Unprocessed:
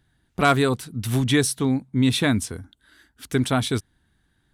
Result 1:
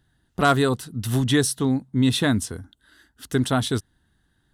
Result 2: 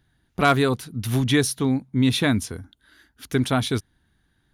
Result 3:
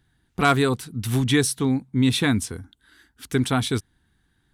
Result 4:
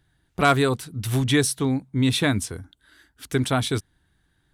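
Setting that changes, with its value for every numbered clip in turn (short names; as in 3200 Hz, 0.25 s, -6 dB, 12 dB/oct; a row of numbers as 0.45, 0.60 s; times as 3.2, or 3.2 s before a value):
notch, frequency: 2300, 8000, 600, 230 Hz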